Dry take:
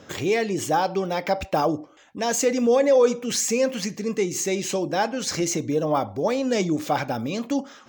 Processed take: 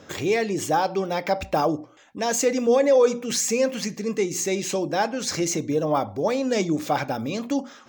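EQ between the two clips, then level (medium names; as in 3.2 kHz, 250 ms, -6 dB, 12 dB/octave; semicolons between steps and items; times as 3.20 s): hum notches 60/120/180/240 Hz; band-stop 3 kHz, Q 28; 0.0 dB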